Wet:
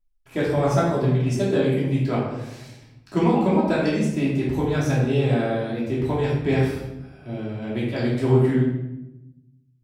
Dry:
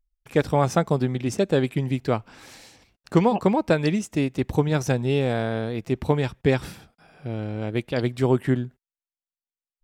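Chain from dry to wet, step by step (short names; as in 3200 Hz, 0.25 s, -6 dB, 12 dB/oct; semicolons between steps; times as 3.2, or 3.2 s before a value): shoebox room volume 350 m³, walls mixed, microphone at 2.9 m; gain -8 dB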